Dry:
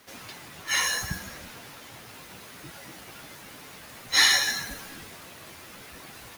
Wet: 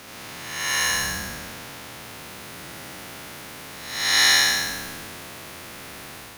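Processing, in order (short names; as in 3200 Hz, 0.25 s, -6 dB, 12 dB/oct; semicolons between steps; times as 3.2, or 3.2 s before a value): time blur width 0.336 s; gain +8 dB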